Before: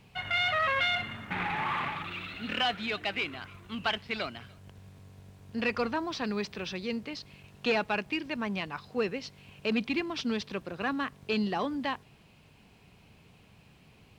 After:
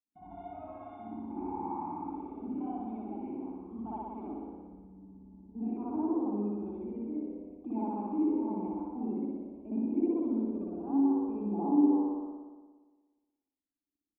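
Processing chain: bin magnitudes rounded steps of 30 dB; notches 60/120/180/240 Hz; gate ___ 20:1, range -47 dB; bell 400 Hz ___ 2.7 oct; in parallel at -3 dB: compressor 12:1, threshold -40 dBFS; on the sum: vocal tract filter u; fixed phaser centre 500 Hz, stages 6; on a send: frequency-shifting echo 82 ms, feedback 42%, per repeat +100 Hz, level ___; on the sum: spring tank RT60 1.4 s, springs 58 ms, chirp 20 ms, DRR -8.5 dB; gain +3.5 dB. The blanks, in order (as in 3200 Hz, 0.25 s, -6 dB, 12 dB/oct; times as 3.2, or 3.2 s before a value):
-53 dBFS, -2.5 dB, -15 dB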